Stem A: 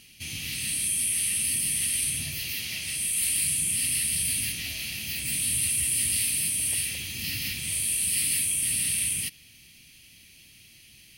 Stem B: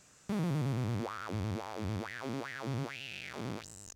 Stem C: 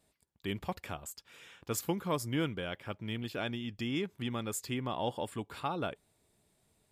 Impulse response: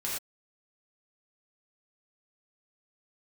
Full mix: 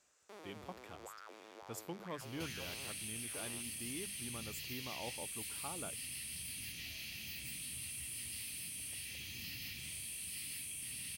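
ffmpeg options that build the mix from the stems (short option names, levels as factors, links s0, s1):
-filter_complex "[0:a]equalizer=f=10000:w=1.6:g=-5,acompressor=threshold=0.00794:ratio=2.5,asoftclip=type=tanh:threshold=0.0224,adelay=2200,volume=0.631[s0];[1:a]highpass=f=370:w=0.5412,highpass=f=370:w=1.3066,volume=0.266[s1];[2:a]volume=0.251[s2];[s0][s1][s2]amix=inputs=3:normalize=0,bandreject=f=50:t=h:w=6,bandreject=f=100:t=h:w=6,bandreject=f=150:t=h:w=6,bandreject=f=200:t=h:w=6"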